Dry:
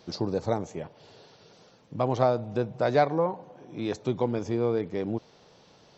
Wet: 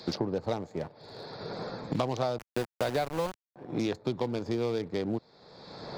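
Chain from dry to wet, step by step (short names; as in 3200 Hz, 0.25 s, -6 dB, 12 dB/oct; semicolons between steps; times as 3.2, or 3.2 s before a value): Wiener smoothing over 15 samples; bell 4500 Hz +12.5 dB 1.8 oct; sample leveller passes 1; 2.38–3.56 sample gate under -23.5 dBFS; three-band squash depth 100%; gain -8 dB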